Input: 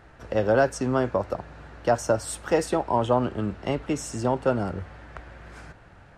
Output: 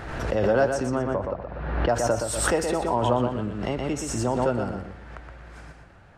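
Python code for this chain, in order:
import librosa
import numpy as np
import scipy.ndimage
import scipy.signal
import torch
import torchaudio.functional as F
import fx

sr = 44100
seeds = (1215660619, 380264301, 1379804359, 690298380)

y = fx.air_absorb(x, sr, metres=330.0, at=(0.89, 1.89))
y = fx.echo_feedback(y, sr, ms=121, feedback_pct=28, wet_db=-6.0)
y = fx.pre_swell(y, sr, db_per_s=42.0)
y = F.gain(torch.from_numpy(y), -2.5).numpy()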